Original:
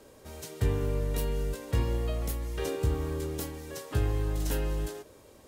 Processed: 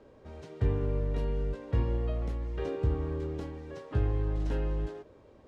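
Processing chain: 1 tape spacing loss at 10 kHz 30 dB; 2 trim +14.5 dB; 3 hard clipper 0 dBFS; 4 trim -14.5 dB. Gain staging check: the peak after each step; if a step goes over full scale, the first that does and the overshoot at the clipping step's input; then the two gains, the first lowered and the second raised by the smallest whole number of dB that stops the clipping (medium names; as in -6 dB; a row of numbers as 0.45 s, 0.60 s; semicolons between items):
-16.0 dBFS, -1.5 dBFS, -1.5 dBFS, -16.0 dBFS; nothing clips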